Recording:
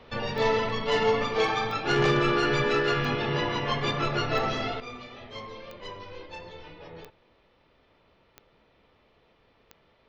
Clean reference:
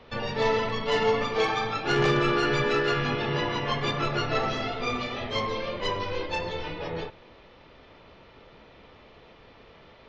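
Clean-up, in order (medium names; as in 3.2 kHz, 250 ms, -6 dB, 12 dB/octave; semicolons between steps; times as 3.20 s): de-click; gain correction +11.5 dB, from 4.80 s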